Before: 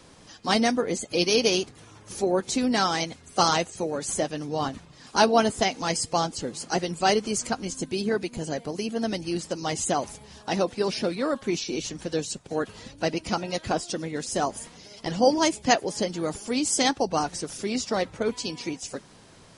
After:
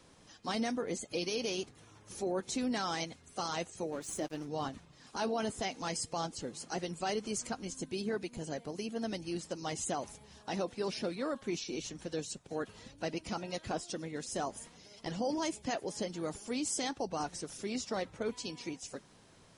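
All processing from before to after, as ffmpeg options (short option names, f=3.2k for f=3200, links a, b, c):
-filter_complex "[0:a]asettb=1/sr,asplit=3[a][b][c];[a]atrim=end=3.924[d];[b]atrim=start=3.92:end=4.47,asetpts=PTS-STARTPTS,afade=t=in:d=0.004:c=qsin,afade=t=out:st=0.546:d=0.004:c=qsin,equalizer=f=330:t=o:w=0.26:g=9,aeval=exprs='sgn(val(0))*max(abs(val(0))-0.00944,0)':c=same[e];[c]atrim=start=4.466[f];[d][e]acrossfade=d=0.004:c1=hsin:c2=qsin[g];[g][f]acrossfade=d=0.004:c1=qsin:c2=hsin,bandreject=f=4.7k:w=27,alimiter=limit=-16.5dB:level=0:latency=1:release=26,volume=-9dB"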